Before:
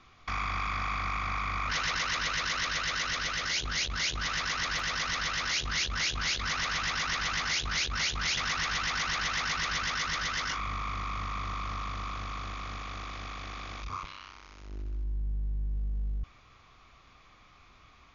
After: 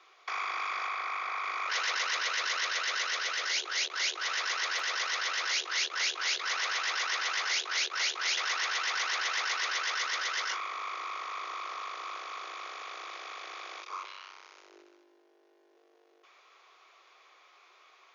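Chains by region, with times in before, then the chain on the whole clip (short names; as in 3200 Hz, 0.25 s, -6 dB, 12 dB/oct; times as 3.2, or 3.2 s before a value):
0.87–1.44 HPF 320 Hz + high shelf 5500 Hz -7.5 dB + notch 2800 Hz, Q 27
whole clip: steep high-pass 350 Hz 72 dB/oct; notch 1200 Hz, Q 29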